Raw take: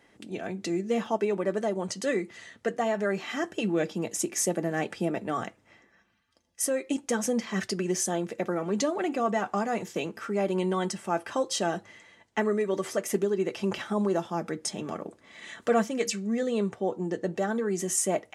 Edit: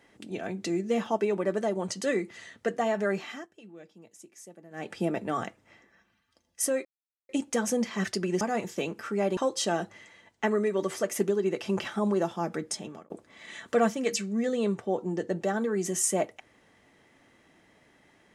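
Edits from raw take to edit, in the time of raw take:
0:03.15–0:05.02: duck −21.5 dB, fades 0.32 s
0:06.85: splice in silence 0.44 s
0:07.97–0:09.59: remove
0:10.55–0:11.31: remove
0:14.61–0:15.04: fade out

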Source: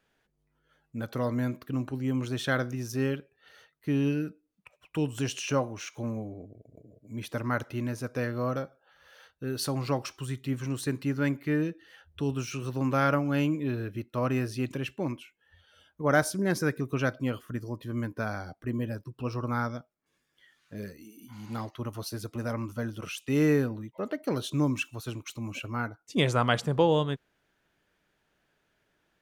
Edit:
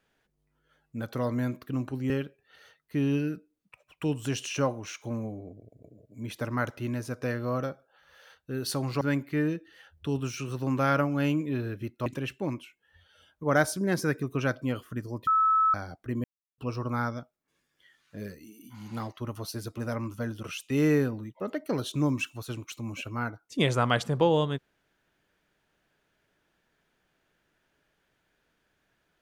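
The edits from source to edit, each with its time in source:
0:02.10–0:03.03: remove
0:09.94–0:11.15: remove
0:14.20–0:14.64: remove
0:17.85–0:18.32: beep over 1,300 Hz −19.5 dBFS
0:18.82–0:19.16: silence

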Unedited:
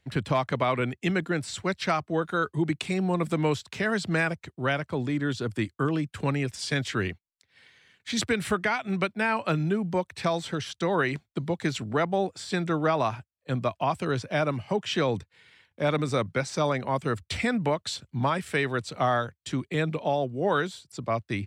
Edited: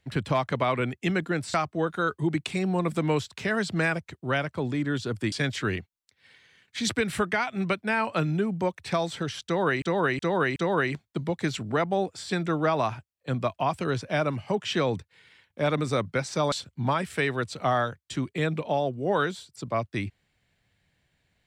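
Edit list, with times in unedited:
0:01.54–0:01.89: remove
0:05.67–0:06.64: remove
0:10.77–0:11.14: repeat, 4 plays
0:16.73–0:17.88: remove

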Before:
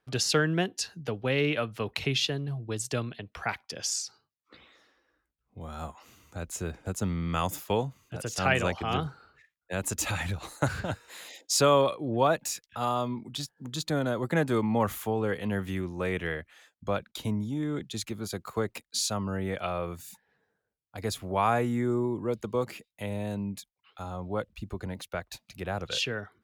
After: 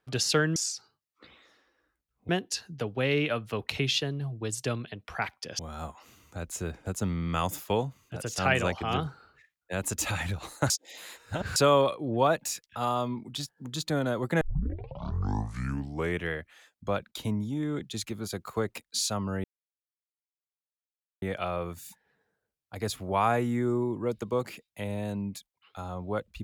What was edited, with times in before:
0:03.86–0:05.59: move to 0:00.56
0:10.70–0:11.56: reverse
0:14.41: tape start 1.81 s
0:19.44: splice in silence 1.78 s

